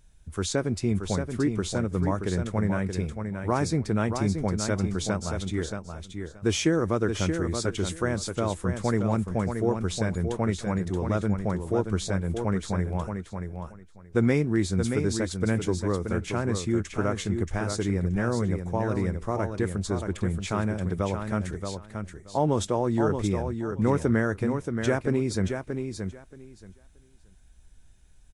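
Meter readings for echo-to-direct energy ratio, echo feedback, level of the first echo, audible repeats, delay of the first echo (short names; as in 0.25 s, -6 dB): -6.5 dB, 17%, -6.5 dB, 2, 0.627 s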